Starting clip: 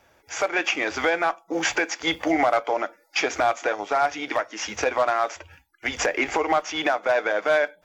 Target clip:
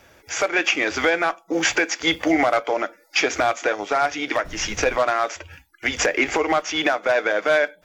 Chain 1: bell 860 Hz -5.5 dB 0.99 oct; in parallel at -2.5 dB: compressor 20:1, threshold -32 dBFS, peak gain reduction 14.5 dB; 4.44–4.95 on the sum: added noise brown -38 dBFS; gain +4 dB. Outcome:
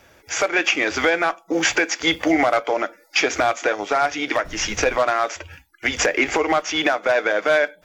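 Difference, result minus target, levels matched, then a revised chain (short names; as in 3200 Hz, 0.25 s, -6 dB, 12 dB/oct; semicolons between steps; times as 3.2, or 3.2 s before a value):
compressor: peak gain reduction -9.5 dB
bell 860 Hz -5.5 dB 0.99 oct; in parallel at -2.5 dB: compressor 20:1, threshold -42 dBFS, peak gain reduction 24 dB; 4.44–4.95 on the sum: added noise brown -38 dBFS; gain +4 dB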